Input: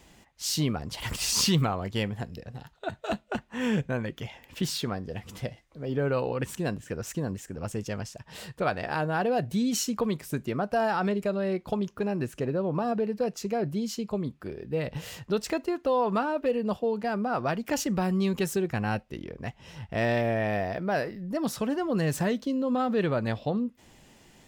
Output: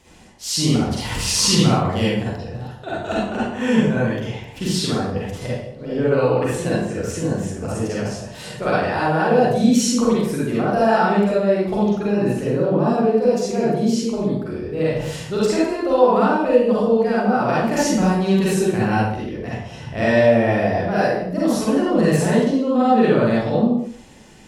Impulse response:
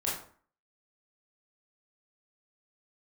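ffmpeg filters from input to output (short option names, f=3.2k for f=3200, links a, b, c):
-filter_complex "[1:a]atrim=start_sample=2205,afade=t=out:st=0.24:d=0.01,atrim=end_sample=11025,asetrate=23814,aresample=44100[a];[0:a][a]afir=irnorm=-1:irlink=0,volume=-1dB"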